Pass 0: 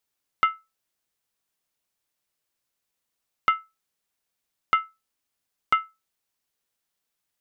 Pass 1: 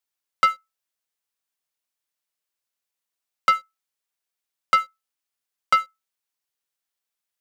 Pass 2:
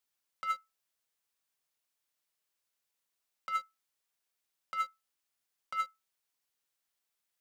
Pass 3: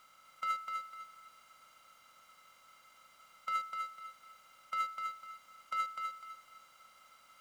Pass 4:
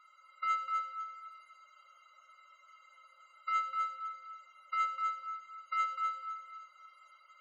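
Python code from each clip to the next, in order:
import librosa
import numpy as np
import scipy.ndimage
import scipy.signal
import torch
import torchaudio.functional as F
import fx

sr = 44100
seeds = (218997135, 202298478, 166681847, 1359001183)

y1 = fx.low_shelf(x, sr, hz=420.0, db=-9.0)
y1 = fx.leveller(y1, sr, passes=2)
y2 = fx.over_compress(y1, sr, threshold_db=-27.0, ratio=-1.0)
y2 = y2 * librosa.db_to_amplitude(-7.0)
y3 = fx.bin_compress(y2, sr, power=0.4)
y3 = fx.echo_feedback(y3, sr, ms=251, feedback_pct=30, wet_db=-5)
y3 = y3 * librosa.db_to_amplitude(-3.0)
y4 = fx.spec_topn(y3, sr, count=32)
y4 = fx.room_shoebox(y4, sr, seeds[0], volume_m3=2700.0, walls='mixed', distance_m=1.4)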